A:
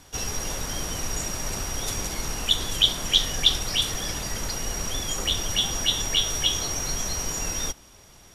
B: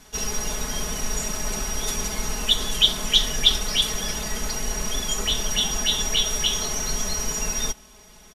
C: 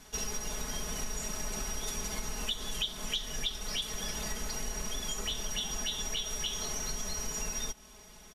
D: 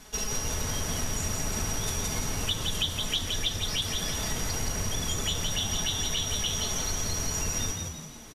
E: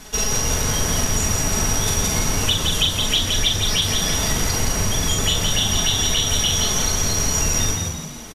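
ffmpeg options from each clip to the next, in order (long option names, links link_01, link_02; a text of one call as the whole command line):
ffmpeg -i in.wav -af "aecho=1:1:4.7:0.99,volume=-1dB" out.wav
ffmpeg -i in.wav -af "acompressor=threshold=-28dB:ratio=5,volume=-4dB" out.wav
ffmpeg -i in.wav -filter_complex "[0:a]asplit=6[link_01][link_02][link_03][link_04][link_05][link_06];[link_02]adelay=169,afreqshift=71,volume=-4.5dB[link_07];[link_03]adelay=338,afreqshift=142,volume=-12dB[link_08];[link_04]adelay=507,afreqshift=213,volume=-19.6dB[link_09];[link_05]adelay=676,afreqshift=284,volume=-27.1dB[link_10];[link_06]adelay=845,afreqshift=355,volume=-34.6dB[link_11];[link_01][link_07][link_08][link_09][link_10][link_11]amix=inputs=6:normalize=0,volume=4dB" out.wav
ffmpeg -i in.wav -filter_complex "[0:a]asplit=2[link_01][link_02];[link_02]adelay=42,volume=-5.5dB[link_03];[link_01][link_03]amix=inputs=2:normalize=0,volume=9dB" out.wav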